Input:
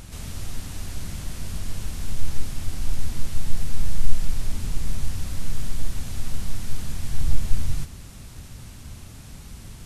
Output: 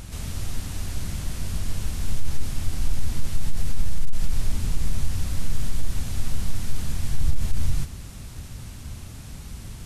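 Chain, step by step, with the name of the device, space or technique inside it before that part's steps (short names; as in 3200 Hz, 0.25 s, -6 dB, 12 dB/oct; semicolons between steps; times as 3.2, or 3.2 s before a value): clipper into limiter (hard clip -4.5 dBFS, distortion -26 dB; limiter -12 dBFS, peak gain reduction 7.5 dB); bell 64 Hz +2.5 dB 2.2 oct; gain +1.5 dB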